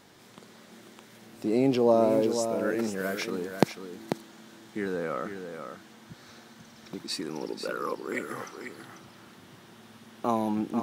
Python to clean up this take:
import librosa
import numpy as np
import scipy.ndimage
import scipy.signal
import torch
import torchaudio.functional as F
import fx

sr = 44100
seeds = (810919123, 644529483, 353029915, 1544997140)

y = fx.fix_echo_inverse(x, sr, delay_ms=492, level_db=-8.0)